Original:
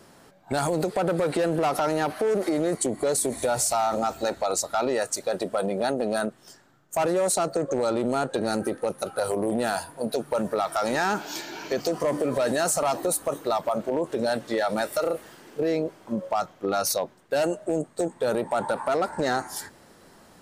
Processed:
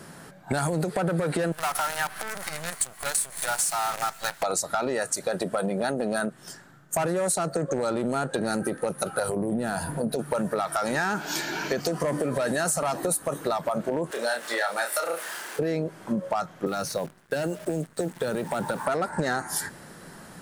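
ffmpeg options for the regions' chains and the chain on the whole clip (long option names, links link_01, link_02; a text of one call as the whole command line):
ffmpeg -i in.wav -filter_complex "[0:a]asettb=1/sr,asplit=3[link_01][link_02][link_03];[link_01]atrim=end=1.524[link_04];[link_02]atrim=start=1.52:end=4.43,asetpts=PTS-STARTPTS,afade=type=in:duration=0.004:curve=qsin,afade=type=out:start_time=2.906:duration=0.004:curve=qsin,highpass=frequency=790:width=0.5412,highpass=frequency=790:width=1.3066,acrusher=bits=6:dc=4:mix=0:aa=0.000001[link_05];[link_03]atrim=start=4.426[link_06];[link_04][link_05]acrossfade=duration=0.004:curve1=hsin:curve2=qsin[link_07];[link_07][link_06]acrossfade=duration=0.004:curve1=qsin:curve2=hsin,asettb=1/sr,asplit=3[link_08][link_09][link_10];[link_08]atrim=end=9.294[link_11];[link_09]atrim=start=9.29:end=10.19,asetpts=PTS-STARTPTS,afade=type=in:duration=0.004:curve=qsin,afade=type=out:start_time=0.896:duration=0.004:curve=qsin,lowshelf=frequency=500:gain=11,acompressor=threshold=-32dB:ratio=2:attack=3.2:release=140:knee=1:detection=peak[link_12];[link_10]atrim=start=10.186[link_13];[link_11][link_12]acrossfade=duration=0.004:curve1=hsin:curve2=qsin[link_14];[link_14][link_13]acrossfade=duration=0.004:curve1=qsin:curve2=hsin,asettb=1/sr,asplit=3[link_15][link_16][link_17];[link_15]atrim=end=14.114[link_18];[link_16]atrim=start=14.11:end=15.59,asetpts=PTS-STARTPTS,afade=type=in:duration=0.004:curve=qsin,afade=type=out:start_time=1.476:duration=0.004:curve=qsin,aeval=exprs='val(0)+0.5*0.00794*sgn(val(0))':channel_layout=same,highpass=720,asplit=2[link_19][link_20];[link_20]adelay=30,volume=-5dB[link_21];[link_19][link_21]amix=inputs=2:normalize=0,atrim=end_sample=65268[link_22];[link_17]atrim=start=15.586[link_23];[link_18][link_22]acrossfade=duration=0.004:curve1=hsin:curve2=qsin[link_24];[link_24][link_23]acrossfade=duration=0.004:curve1=qsin:curve2=hsin,asettb=1/sr,asplit=3[link_25][link_26][link_27];[link_25]atrim=end=16.664[link_28];[link_26]atrim=start=16.66:end=18.86,asetpts=PTS-STARTPTS,afade=type=in:duration=0.004:curve=qsin,afade=type=out:start_time=2.196:duration=0.004:curve=qsin,equalizer=frequency=690:width=1.8:gain=-2,acrossover=split=530|2300|6000[link_29][link_30][link_31][link_32];[link_29]acompressor=threshold=-30dB:ratio=3[link_33];[link_30]acompressor=threshold=-37dB:ratio=3[link_34];[link_31]acompressor=threshold=-45dB:ratio=3[link_35];[link_32]acompressor=threshold=-55dB:ratio=3[link_36];[link_33][link_34][link_35][link_36]amix=inputs=4:normalize=0,acrusher=bits=9:dc=4:mix=0:aa=0.000001[link_37];[link_27]atrim=start=18.856[link_38];[link_28][link_37]acrossfade=duration=0.004:curve1=hsin:curve2=qsin[link_39];[link_39][link_38]acrossfade=duration=0.004:curve1=qsin:curve2=hsin,equalizer=frequency=160:width_type=o:width=0.67:gain=9,equalizer=frequency=1600:width_type=o:width=0.67:gain=6,equalizer=frequency=10000:width_type=o:width=0.67:gain=6,acompressor=threshold=-29dB:ratio=4,volume=4.5dB" out.wav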